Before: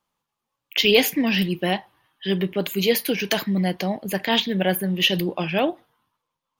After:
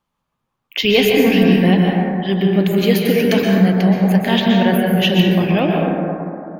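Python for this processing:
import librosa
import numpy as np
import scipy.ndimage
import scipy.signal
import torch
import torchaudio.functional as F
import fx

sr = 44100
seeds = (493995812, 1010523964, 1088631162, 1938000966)

y = fx.bass_treble(x, sr, bass_db=7, treble_db=-5)
y = fx.rev_plate(y, sr, seeds[0], rt60_s=2.8, hf_ratio=0.25, predelay_ms=110, drr_db=-2.0)
y = y * 10.0 ** (1.5 / 20.0)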